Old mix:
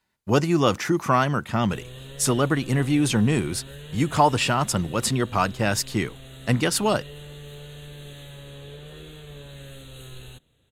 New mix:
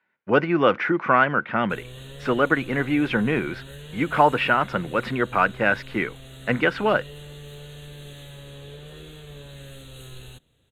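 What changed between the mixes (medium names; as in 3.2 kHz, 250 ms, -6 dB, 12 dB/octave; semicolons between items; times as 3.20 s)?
speech: add cabinet simulation 200–2900 Hz, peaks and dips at 510 Hz +5 dB, 1.5 kHz +9 dB, 2.2 kHz +6 dB; master: add peaking EQ 5.5 kHz +3 dB 0.2 oct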